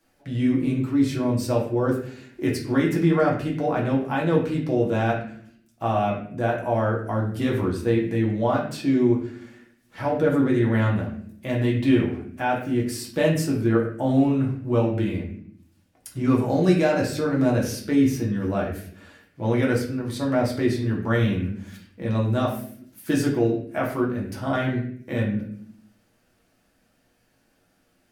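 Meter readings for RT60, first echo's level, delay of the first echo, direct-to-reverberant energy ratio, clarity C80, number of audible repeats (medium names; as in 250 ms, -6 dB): 0.60 s, no echo, no echo, -3.5 dB, 9.0 dB, no echo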